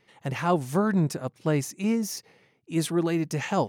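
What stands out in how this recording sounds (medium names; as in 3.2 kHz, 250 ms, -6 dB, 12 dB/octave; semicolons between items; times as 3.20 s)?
noise floor -66 dBFS; spectral tilt -6.0 dB/octave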